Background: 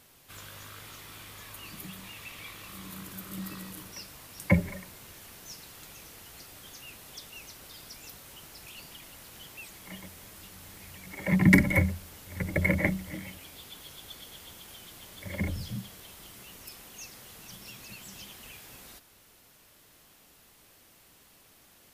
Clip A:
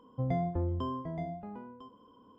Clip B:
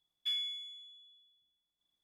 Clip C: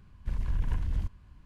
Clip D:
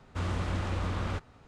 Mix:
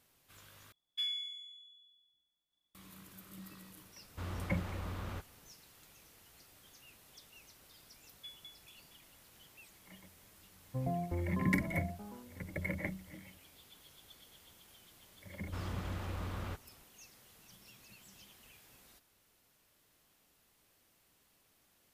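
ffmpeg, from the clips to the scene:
-filter_complex "[2:a]asplit=2[s0][s1];[4:a]asplit=2[s2][s3];[0:a]volume=0.237[s4];[s0]asplit=4[s5][s6][s7][s8];[s6]adelay=105,afreqshift=-42,volume=0.119[s9];[s7]adelay=210,afreqshift=-84,volume=0.0442[s10];[s8]adelay=315,afreqshift=-126,volume=0.0162[s11];[s5][s9][s10][s11]amix=inputs=4:normalize=0[s12];[s1]aeval=exprs='val(0)*pow(10,-27*if(lt(mod(4.3*n/s,1),2*abs(4.3)/1000),1-mod(4.3*n/s,1)/(2*abs(4.3)/1000),(mod(4.3*n/s,1)-2*abs(4.3)/1000)/(1-2*abs(4.3)/1000))/20)':c=same[s13];[1:a]afwtdn=0.00708[s14];[s4]asplit=2[s15][s16];[s15]atrim=end=0.724[s17];[s12]atrim=end=2.03,asetpts=PTS-STARTPTS,volume=0.841[s18];[s16]atrim=start=2.746[s19];[s2]atrim=end=1.47,asetpts=PTS-STARTPTS,volume=0.335,afade=t=in:d=0.004:c=hsin,afade=t=out:st=1.466:d=0.004:c=hsin,adelay=4020[s20];[s13]atrim=end=2.03,asetpts=PTS-STARTPTS,volume=0.376,afade=t=in:d=0.004:c=hsin,afade=t=out:st=2.026:d=0.004:c=hsin,adelay=7980[s21];[s14]atrim=end=2.38,asetpts=PTS-STARTPTS,volume=0.562,afade=t=in:d=0.004:c=hsin,afade=t=out:st=2.376:d=0.004:c=hsin,adelay=10560[s22];[s3]atrim=end=1.47,asetpts=PTS-STARTPTS,volume=0.376,afade=t=in:d=0.004:c=hsin,afade=t=out:st=1.466:d=0.004:c=hsin,adelay=15370[s23];[s17][s18]acrossfade=d=0.004:c1=hsin:c2=hsin[s24];[s24][s19]acrossfade=d=0.004:c1=hsin:c2=hsin[s25];[s25][s20][s21][s22][s23]amix=inputs=5:normalize=0"

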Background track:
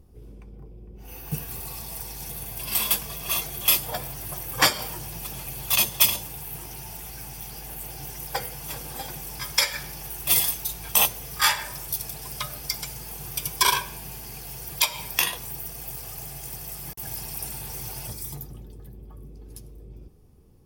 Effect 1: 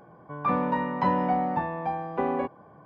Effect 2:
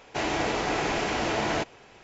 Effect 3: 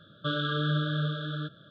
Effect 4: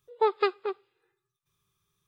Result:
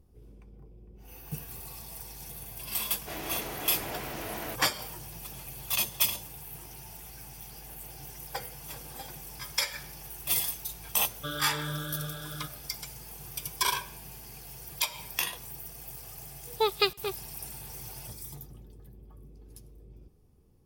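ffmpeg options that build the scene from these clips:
-filter_complex "[0:a]volume=0.422[s0];[2:a]bandreject=f=870:w=24[s1];[3:a]lowshelf=f=320:g=-4.5[s2];[4:a]aexciter=amount=5.9:drive=5.6:freq=2500[s3];[s1]atrim=end=2.03,asetpts=PTS-STARTPTS,volume=0.266,afade=t=in:d=0.004:c=hsin,afade=t=out:st=2.026:d=0.004:c=hsin,adelay=2920[s4];[s2]atrim=end=1.7,asetpts=PTS-STARTPTS,volume=0.562,afade=t=in:d=0.004:c=hsin,afade=t=out:st=1.696:d=0.004:c=hsin,adelay=10990[s5];[s3]atrim=end=2.07,asetpts=PTS-STARTPTS,volume=0.708,afade=t=in:d=0.004:c=hsin,afade=t=out:st=2.066:d=0.004:c=hsin,adelay=16390[s6];[s0][s4][s5][s6]amix=inputs=4:normalize=0"

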